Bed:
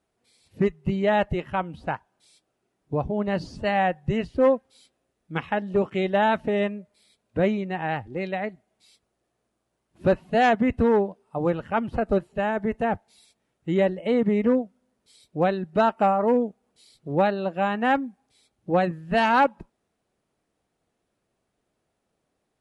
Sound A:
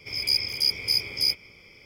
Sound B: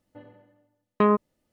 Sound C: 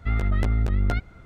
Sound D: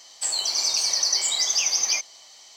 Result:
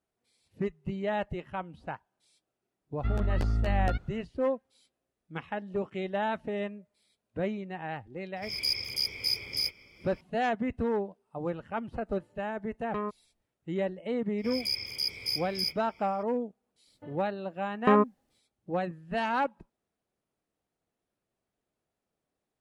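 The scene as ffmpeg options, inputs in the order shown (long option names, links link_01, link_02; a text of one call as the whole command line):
ffmpeg -i bed.wav -i cue0.wav -i cue1.wav -i cue2.wav -filter_complex "[1:a]asplit=2[link_01][link_02];[2:a]asplit=2[link_03][link_04];[0:a]volume=-9.5dB[link_05];[3:a]bandreject=frequency=2100:width=8.2[link_06];[link_01]aphaser=in_gain=1:out_gain=1:delay=4.1:decay=0.26:speed=1.7:type=triangular[link_07];[link_03]asubboost=boost=12:cutoff=95[link_08];[link_06]atrim=end=1.25,asetpts=PTS-STARTPTS,volume=-5.5dB,afade=type=in:duration=0.004:curve=hsin,afade=type=out:start_time=1.246:duration=0.004:curve=hsin,adelay=2980[link_09];[link_07]atrim=end=1.85,asetpts=PTS-STARTPTS,volume=-6dB,afade=type=in:duration=0.004:curve=hsin,afade=type=out:start_time=1.846:duration=0.004:curve=hsin,adelay=8360[link_10];[link_08]atrim=end=1.52,asetpts=PTS-STARTPTS,volume=-12.5dB,afade=type=in:duration=0.004:curve=hsin,afade=type=out:start_time=1.516:duration=0.004:curve=hsin,adelay=11940[link_11];[link_02]atrim=end=1.85,asetpts=PTS-STARTPTS,volume=-8dB,afade=type=in:duration=0.004:curve=hsin,afade=type=out:start_time=1.846:duration=0.004:curve=hsin,adelay=14380[link_12];[link_04]atrim=end=1.52,asetpts=PTS-STARTPTS,volume=-2dB,afade=type=in:duration=0.004:curve=hsin,afade=type=out:start_time=1.516:duration=0.004:curve=hsin,adelay=16870[link_13];[link_05][link_09][link_10][link_11][link_12][link_13]amix=inputs=6:normalize=0" out.wav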